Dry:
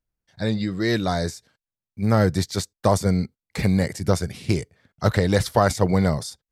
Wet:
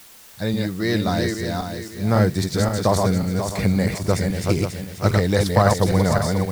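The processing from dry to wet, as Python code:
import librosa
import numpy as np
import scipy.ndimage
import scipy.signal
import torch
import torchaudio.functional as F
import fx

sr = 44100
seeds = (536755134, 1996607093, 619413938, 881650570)

p1 = fx.reverse_delay_fb(x, sr, ms=269, feedback_pct=56, wet_db=-3.0)
p2 = fx.quant_dither(p1, sr, seeds[0], bits=6, dither='triangular')
p3 = p1 + (p2 * librosa.db_to_amplitude(-6.5))
y = p3 * librosa.db_to_amplitude(-3.5)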